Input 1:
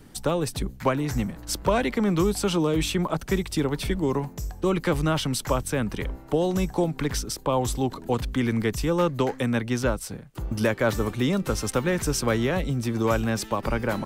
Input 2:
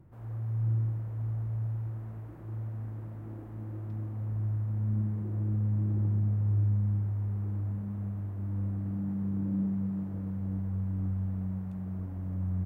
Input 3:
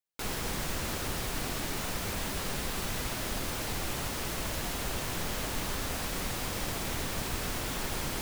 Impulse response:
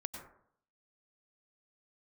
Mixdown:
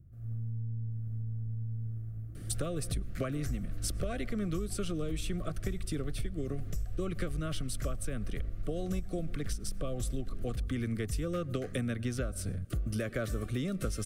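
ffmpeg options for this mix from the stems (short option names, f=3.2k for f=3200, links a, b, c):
-filter_complex "[0:a]equalizer=f=9.4k:w=3.6:g=8.5,adelay=2350,volume=-2.5dB,asplit=2[a][b];[b]volume=-16dB[c];[1:a]bass=f=250:g=11,treble=f=4k:g=13,alimiter=limit=-22dB:level=0:latency=1:release=307,aeval=exprs='0.168*(cos(1*acos(clip(val(0)/0.168,-1,1)))-cos(1*PI/2))+0.0106*(cos(6*acos(clip(val(0)/0.168,-1,1)))-cos(6*PI/2))':c=same,volume=-15dB[d];[2:a]lowpass=f=1.2k:p=1,asubboost=boost=6.5:cutoff=85,aecho=1:1:5.8:0.75,adelay=2350,volume=-15dB[e];[3:a]atrim=start_sample=2205[f];[c][f]afir=irnorm=-1:irlink=0[g];[a][d][e][g]amix=inputs=4:normalize=0,asuperstop=centerf=910:order=20:qfactor=2.6,lowshelf=f=100:g=12,acompressor=threshold=-30dB:ratio=10"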